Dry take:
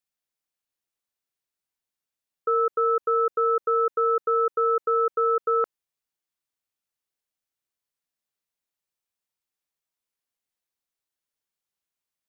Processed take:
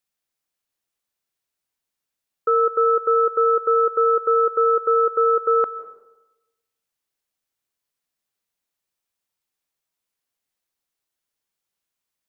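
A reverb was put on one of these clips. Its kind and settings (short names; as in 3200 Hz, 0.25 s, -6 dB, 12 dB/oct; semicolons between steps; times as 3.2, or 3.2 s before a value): digital reverb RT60 1 s, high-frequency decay 0.5×, pre-delay 0.115 s, DRR 16 dB; gain +4.5 dB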